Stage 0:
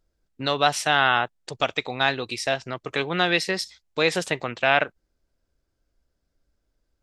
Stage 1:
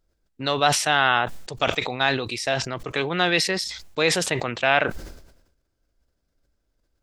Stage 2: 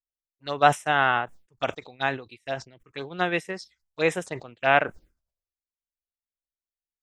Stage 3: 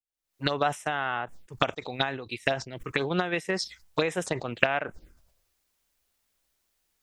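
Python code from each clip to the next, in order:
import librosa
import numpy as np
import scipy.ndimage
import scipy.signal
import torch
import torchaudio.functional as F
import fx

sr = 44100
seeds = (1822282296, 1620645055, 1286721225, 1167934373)

y1 = fx.sustainer(x, sr, db_per_s=65.0)
y2 = fx.env_phaser(y1, sr, low_hz=200.0, high_hz=4500.0, full_db=-19.0)
y2 = fx.upward_expand(y2, sr, threshold_db=-43.0, expansion=2.5)
y2 = y2 * 10.0 ** (4.5 / 20.0)
y3 = fx.recorder_agc(y2, sr, target_db=-7.5, rise_db_per_s=75.0, max_gain_db=30)
y3 = y3 * 10.0 ** (-9.5 / 20.0)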